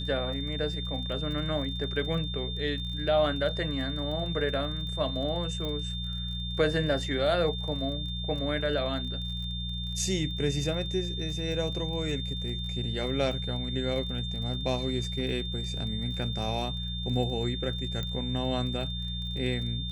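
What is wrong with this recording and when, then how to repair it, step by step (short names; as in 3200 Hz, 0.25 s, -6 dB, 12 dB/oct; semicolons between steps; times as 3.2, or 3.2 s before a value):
crackle 31/s -38 dBFS
hum 60 Hz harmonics 3 -35 dBFS
tone 3600 Hz -36 dBFS
5.65 pop -23 dBFS
18.03 pop -21 dBFS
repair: de-click; notch 3600 Hz, Q 30; de-hum 60 Hz, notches 3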